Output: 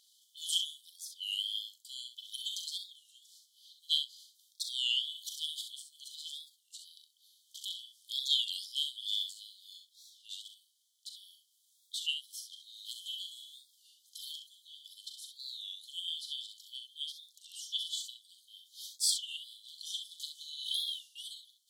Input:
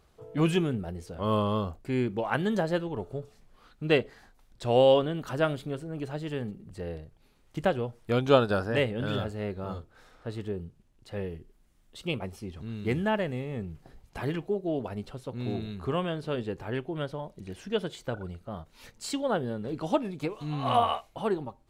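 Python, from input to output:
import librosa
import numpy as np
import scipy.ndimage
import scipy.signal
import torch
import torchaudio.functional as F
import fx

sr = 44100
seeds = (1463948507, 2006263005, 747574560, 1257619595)

p1 = fx.brickwall_highpass(x, sr, low_hz=3000.0)
p2 = p1 + fx.room_early_taps(p1, sr, ms=(40, 66), db=(-8.5, -7.5), dry=0)
p3 = fx.record_warp(p2, sr, rpm=33.33, depth_cents=160.0)
y = F.gain(torch.from_numpy(p3), 8.5).numpy()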